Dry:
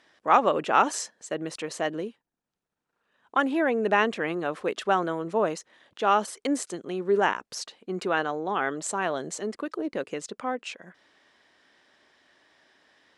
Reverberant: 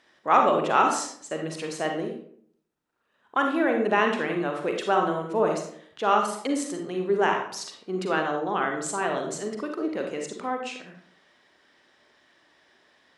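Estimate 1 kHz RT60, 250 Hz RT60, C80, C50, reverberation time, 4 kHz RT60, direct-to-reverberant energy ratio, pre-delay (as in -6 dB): 0.55 s, 0.75 s, 8.5 dB, 4.5 dB, 0.60 s, 0.40 s, 2.0 dB, 38 ms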